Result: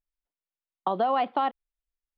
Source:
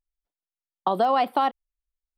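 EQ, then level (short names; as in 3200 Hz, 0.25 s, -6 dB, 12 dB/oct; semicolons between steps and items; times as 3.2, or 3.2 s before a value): LPF 3600 Hz 24 dB/oct; -3.5 dB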